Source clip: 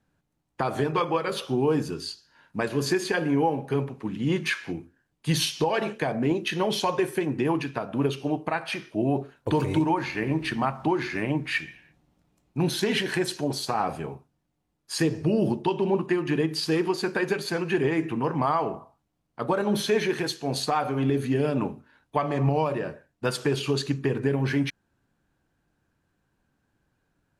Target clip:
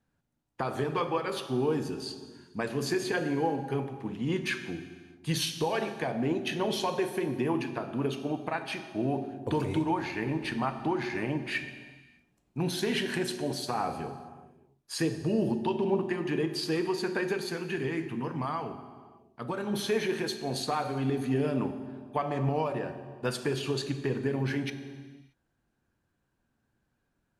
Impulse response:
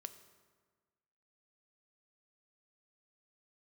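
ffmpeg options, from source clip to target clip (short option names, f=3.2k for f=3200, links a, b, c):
-filter_complex "[0:a]asettb=1/sr,asplit=3[a][b][c];[a]atrim=end=17.464[d];[b]atrim=start=17.46:end=19.73,asetpts=PTS-STARTPTS,afade=t=in:d=0.004:c=qsin,afade=t=out:st=2.266:d=0.004:c=qsin,equalizer=f=630:w=0.72:g=-6.5[e];[c]atrim=start=19.726[f];[d][e]acrossfade=d=0.004:c1=hsin:c2=qsin[g];[g][f]acrossfade=d=0.004:c1=qsin:c2=hsin[h];[1:a]atrim=start_sample=2205,afade=t=out:st=0.43:d=0.01,atrim=end_sample=19404,asetrate=26460,aresample=44100[i];[h][i]afir=irnorm=-1:irlink=0,volume=-2.5dB"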